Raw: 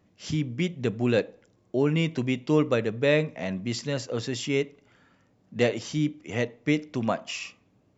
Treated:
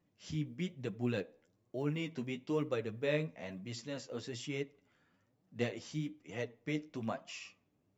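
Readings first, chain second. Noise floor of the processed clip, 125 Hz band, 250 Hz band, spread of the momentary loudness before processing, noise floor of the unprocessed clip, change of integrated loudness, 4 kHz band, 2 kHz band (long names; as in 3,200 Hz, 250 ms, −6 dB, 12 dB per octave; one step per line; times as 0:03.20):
−77 dBFS, −11.5 dB, −12.0 dB, 9 LU, −65 dBFS, −12.0 dB, −12.0 dB, −12.0 dB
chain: floating-point word with a short mantissa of 6 bits
flanger 1.1 Hz, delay 5.5 ms, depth 8.4 ms, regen +25%
level −8.5 dB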